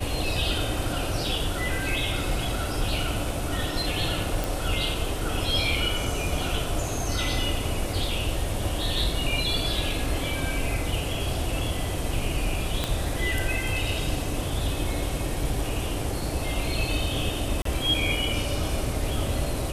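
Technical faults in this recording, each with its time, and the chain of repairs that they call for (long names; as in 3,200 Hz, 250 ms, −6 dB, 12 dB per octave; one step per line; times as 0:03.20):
0:04.44: click
0:12.84: click −11 dBFS
0:17.62–0:17.65: drop-out 33 ms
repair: click removal
repair the gap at 0:17.62, 33 ms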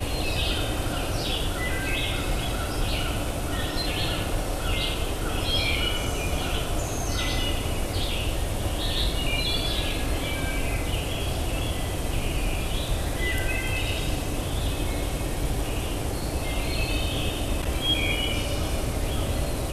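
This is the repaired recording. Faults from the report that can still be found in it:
0:12.84: click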